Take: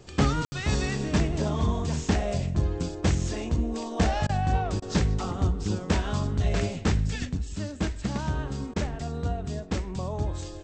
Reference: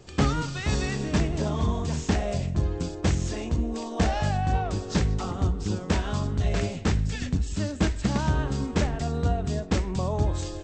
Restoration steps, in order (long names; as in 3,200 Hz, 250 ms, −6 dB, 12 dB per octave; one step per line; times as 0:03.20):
ambience match 0:00.45–0:00.52
repair the gap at 0:04.27/0:04.80/0:08.74, 20 ms
level correction +4.5 dB, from 0:07.25